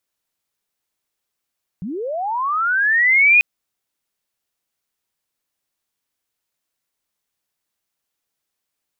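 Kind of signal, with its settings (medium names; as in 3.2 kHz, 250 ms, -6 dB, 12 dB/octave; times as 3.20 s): sweep linear 160 Hz -> 2.5 kHz -24.5 dBFS -> -8 dBFS 1.59 s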